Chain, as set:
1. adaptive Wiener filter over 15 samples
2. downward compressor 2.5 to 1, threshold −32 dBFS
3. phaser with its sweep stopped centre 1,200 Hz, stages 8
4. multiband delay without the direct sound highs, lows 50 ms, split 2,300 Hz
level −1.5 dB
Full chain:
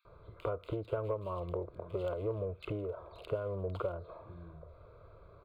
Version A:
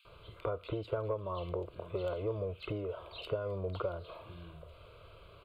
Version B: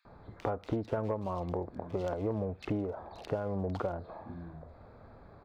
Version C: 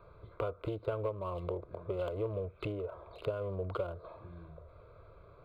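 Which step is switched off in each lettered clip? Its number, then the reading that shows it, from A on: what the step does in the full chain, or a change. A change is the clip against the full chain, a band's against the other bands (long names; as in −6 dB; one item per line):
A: 1, 4 kHz band +8.0 dB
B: 3, 250 Hz band +5.0 dB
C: 4, echo-to-direct ratio 7.0 dB to none audible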